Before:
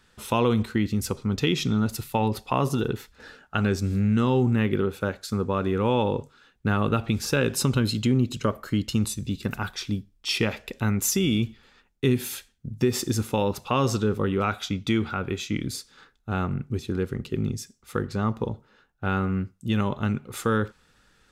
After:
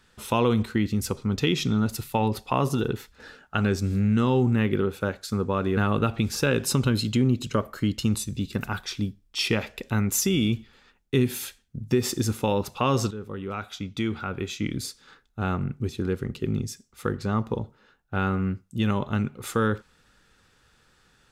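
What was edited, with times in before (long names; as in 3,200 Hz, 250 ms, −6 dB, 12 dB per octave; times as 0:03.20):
0:05.77–0:06.67: remove
0:14.01–0:15.71: fade in, from −13.5 dB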